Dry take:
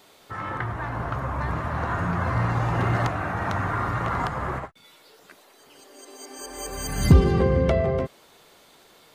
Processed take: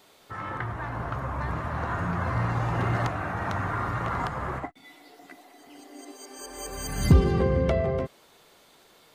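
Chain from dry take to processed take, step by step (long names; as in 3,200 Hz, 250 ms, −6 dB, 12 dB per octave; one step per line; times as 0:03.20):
0:04.63–0:06.11: hollow resonant body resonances 290/720/2,000 Hz, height 18 dB → 14 dB, ringing for 55 ms
level −3 dB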